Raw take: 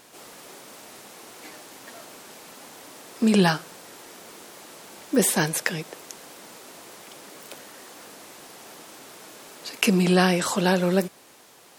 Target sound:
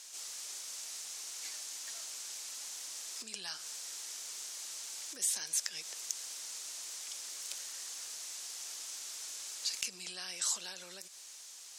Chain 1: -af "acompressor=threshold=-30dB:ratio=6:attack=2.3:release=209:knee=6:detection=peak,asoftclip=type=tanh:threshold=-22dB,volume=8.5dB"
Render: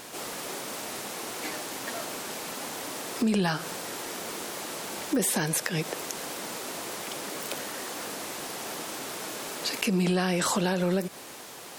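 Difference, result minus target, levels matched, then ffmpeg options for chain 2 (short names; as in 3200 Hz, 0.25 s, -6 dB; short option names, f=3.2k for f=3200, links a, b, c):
8000 Hz band -6.0 dB
-af "acompressor=threshold=-30dB:ratio=6:attack=2.3:release=209:knee=6:detection=peak,bandpass=f=6.4k:t=q:w=1.8:csg=0,asoftclip=type=tanh:threshold=-22dB,volume=8.5dB"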